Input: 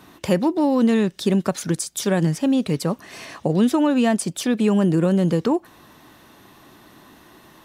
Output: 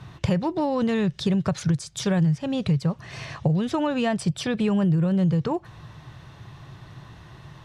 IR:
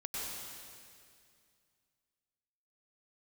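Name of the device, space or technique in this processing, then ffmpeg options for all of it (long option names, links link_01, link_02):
jukebox: -filter_complex "[0:a]asettb=1/sr,asplit=3[link_01][link_02][link_03];[link_01]atrim=end=4.054[link_04];[link_02]atrim=start=4.05:end=5.19,asetpts=PTS-STARTPTS,afade=type=in:duration=0.004:curve=qsin,afade=type=out:start_time=1.136:duration=0.004:curve=qsin,bandreject=frequency=6600:width=8.6[link_05];[link_03]atrim=start=5.186[link_06];[link_04][link_05]acrossfade=duration=0.004:curve1=hsin:curve2=qsin[link_07];[link_07][link_06]acrossfade=duration=0.004:curve1=qsin:curve2=hsin,lowpass=5600,lowshelf=frequency=180:width_type=q:width=3:gain=11,acompressor=threshold=-19dB:ratio=6"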